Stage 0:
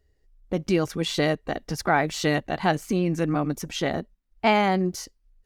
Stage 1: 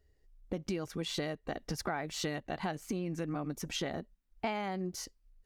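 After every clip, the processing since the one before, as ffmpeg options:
-af "acompressor=threshold=-30dB:ratio=6,volume=-3dB"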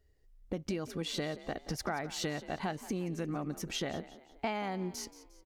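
-filter_complex "[0:a]asplit=5[a][b][c][d][e];[b]adelay=177,afreqshift=49,volume=-16dB[f];[c]adelay=354,afreqshift=98,volume=-23.3dB[g];[d]adelay=531,afreqshift=147,volume=-30.7dB[h];[e]adelay=708,afreqshift=196,volume=-38dB[i];[a][f][g][h][i]amix=inputs=5:normalize=0"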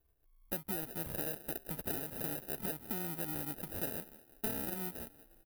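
-af "acrusher=samples=40:mix=1:aa=0.000001,aexciter=amount=9.4:drive=4.7:freq=9.8k,volume=-6.5dB"

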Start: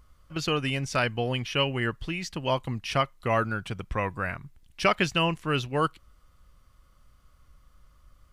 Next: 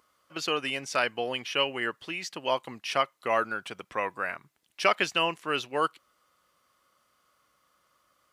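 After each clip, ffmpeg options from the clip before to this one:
-af "highpass=380"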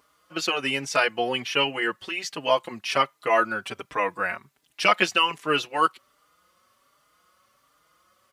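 -filter_complex "[0:a]asplit=2[a][b];[b]adelay=4.6,afreqshift=1.3[c];[a][c]amix=inputs=2:normalize=1,volume=8dB"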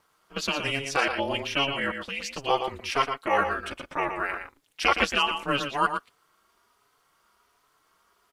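-filter_complex "[0:a]aeval=exprs='val(0)*sin(2*PI*140*n/s)':c=same,asplit=2[a][b];[b]adelay=116.6,volume=-7dB,highshelf=f=4k:g=-2.62[c];[a][c]amix=inputs=2:normalize=0"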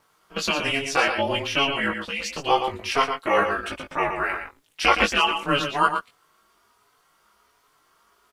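-filter_complex "[0:a]asplit=2[a][b];[b]adelay=19,volume=-4dB[c];[a][c]amix=inputs=2:normalize=0,volume=2.5dB"

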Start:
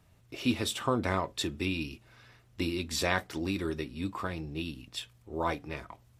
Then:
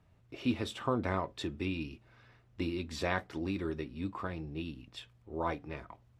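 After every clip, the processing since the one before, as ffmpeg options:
-af "aemphasis=mode=reproduction:type=75kf,volume=-2.5dB"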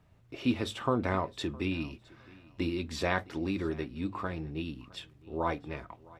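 -af "bandreject=f=50:t=h:w=6,bandreject=f=100:t=h:w=6,aecho=1:1:662|1324:0.0708|0.0149,volume=3dB"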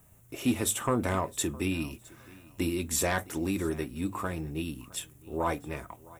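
-af "aexciter=amount=15.2:drive=3:freq=6.8k,aeval=exprs='0.251*sin(PI/2*1.58*val(0)/0.251)':c=same,volume=-5.5dB"

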